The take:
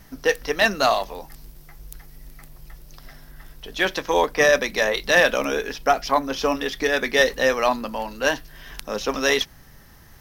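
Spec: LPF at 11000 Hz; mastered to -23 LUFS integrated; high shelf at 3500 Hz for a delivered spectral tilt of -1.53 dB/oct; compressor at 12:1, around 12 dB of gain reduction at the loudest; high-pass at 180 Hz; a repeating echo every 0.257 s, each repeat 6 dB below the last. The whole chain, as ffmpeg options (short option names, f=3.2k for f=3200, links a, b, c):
-af "highpass=180,lowpass=11k,highshelf=f=3.5k:g=4.5,acompressor=threshold=-24dB:ratio=12,aecho=1:1:257|514|771|1028|1285|1542:0.501|0.251|0.125|0.0626|0.0313|0.0157,volume=5.5dB"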